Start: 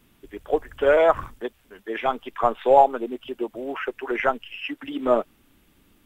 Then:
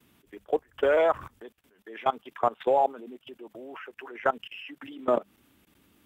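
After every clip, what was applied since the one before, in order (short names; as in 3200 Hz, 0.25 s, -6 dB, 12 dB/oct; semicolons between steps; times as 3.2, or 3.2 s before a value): HPF 70 Hz 12 dB/oct; notches 50/100/150/200 Hz; level quantiser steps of 21 dB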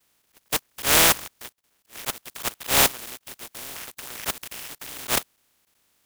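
spectral contrast lowered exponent 0.13; auto swell 0.128 s; sample leveller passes 2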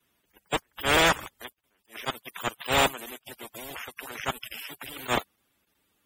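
loudest bins only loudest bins 64; soft clip -20.5 dBFS, distortion -13 dB; gain +5.5 dB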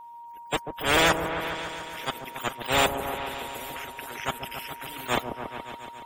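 whine 940 Hz -42 dBFS; repeats that get brighter 0.141 s, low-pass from 750 Hz, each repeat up 1 oct, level -6 dB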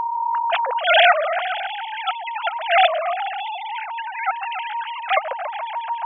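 sine-wave speech; gain +8 dB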